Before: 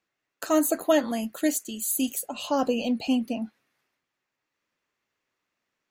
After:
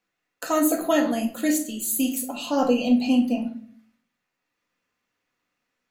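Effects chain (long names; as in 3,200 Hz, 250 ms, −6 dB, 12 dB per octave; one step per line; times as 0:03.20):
rectangular room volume 500 cubic metres, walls furnished, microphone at 1.9 metres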